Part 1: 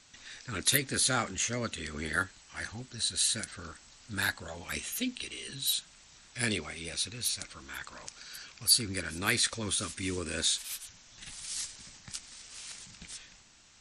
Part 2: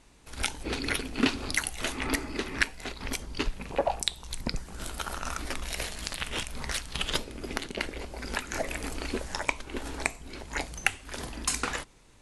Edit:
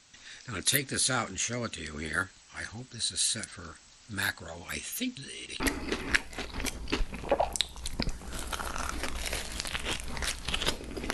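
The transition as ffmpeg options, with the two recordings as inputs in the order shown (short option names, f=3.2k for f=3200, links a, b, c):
-filter_complex "[0:a]apad=whole_dur=11.13,atrim=end=11.13,asplit=2[a][b];[a]atrim=end=5.172[c];[b]atrim=start=5.168:end=5.602,asetpts=PTS-STARTPTS,areverse[d];[1:a]atrim=start=2.068:end=7.6[e];[c][d]acrossfade=d=0.004:c1=hsin:c2=hsin[f];[f][e]acrossfade=d=0.004:c1=hsin:c2=hsin"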